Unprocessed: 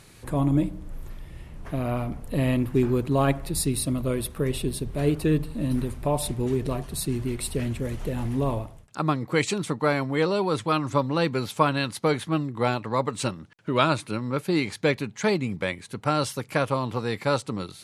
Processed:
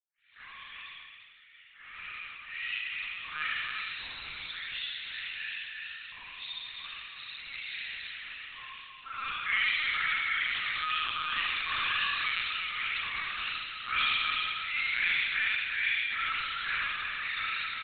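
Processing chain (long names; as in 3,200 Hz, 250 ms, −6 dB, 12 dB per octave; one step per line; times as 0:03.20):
every frequency bin delayed by itself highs late, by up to 432 ms
inverse Chebyshev high-pass filter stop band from 560 Hz, stop band 60 dB
harmonic and percussive parts rebalanced harmonic −6 dB
soft clipping −28 dBFS, distortion −14 dB
spring reverb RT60 1.5 s, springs 37 ms, chirp 40 ms, DRR −9.5 dB
downward expander −50 dBFS
multi-tap delay 72/116/346/354 ms −13.5/−7.5/−8/−9 dB
linear-prediction vocoder at 8 kHz pitch kept
MP3 64 kbit/s 24,000 Hz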